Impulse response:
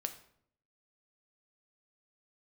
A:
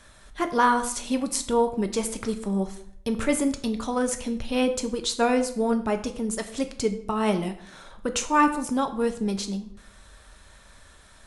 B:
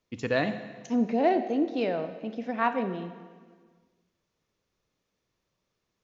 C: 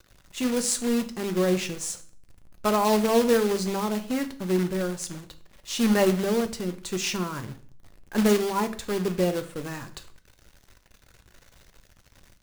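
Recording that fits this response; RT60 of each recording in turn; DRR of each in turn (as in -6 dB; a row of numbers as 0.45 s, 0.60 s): A; 0.65 s, 1.6 s, 0.50 s; 6.5 dB, 9.5 dB, 8.0 dB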